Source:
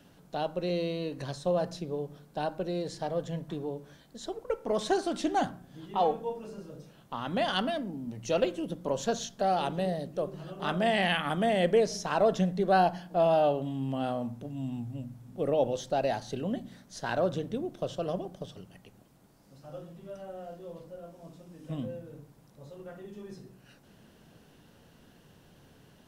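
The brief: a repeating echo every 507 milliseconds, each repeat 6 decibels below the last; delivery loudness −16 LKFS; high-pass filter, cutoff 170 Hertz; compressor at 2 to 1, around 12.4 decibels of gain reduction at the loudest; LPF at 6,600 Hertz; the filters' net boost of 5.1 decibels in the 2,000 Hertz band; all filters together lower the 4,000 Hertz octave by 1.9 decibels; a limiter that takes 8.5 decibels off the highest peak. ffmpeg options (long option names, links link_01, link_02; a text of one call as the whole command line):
ffmpeg -i in.wav -af "highpass=170,lowpass=6600,equalizer=frequency=2000:width_type=o:gain=8,equalizer=frequency=4000:width_type=o:gain=-6.5,acompressor=threshold=-43dB:ratio=2,alimiter=level_in=8dB:limit=-24dB:level=0:latency=1,volume=-8dB,aecho=1:1:507|1014|1521|2028|2535|3042:0.501|0.251|0.125|0.0626|0.0313|0.0157,volume=26.5dB" out.wav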